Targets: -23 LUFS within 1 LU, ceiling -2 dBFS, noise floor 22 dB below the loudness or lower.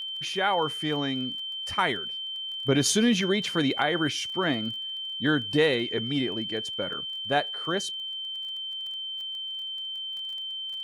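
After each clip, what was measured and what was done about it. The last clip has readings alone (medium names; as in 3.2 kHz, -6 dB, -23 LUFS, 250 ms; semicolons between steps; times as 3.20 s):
tick rate 22 per s; steady tone 3.1 kHz; tone level -32 dBFS; loudness -27.5 LUFS; peak level -12.0 dBFS; loudness target -23.0 LUFS
-> de-click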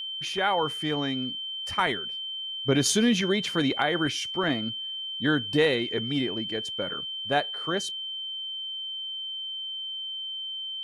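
tick rate 0.092 per s; steady tone 3.1 kHz; tone level -32 dBFS
-> band-stop 3.1 kHz, Q 30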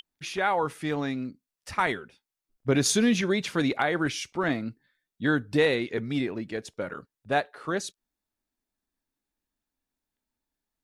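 steady tone not found; loudness -27.5 LUFS; peak level -12.0 dBFS; loudness target -23.0 LUFS
-> trim +4.5 dB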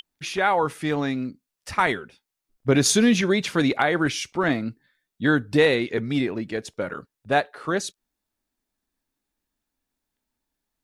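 loudness -23.0 LUFS; peak level -7.5 dBFS; noise floor -85 dBFS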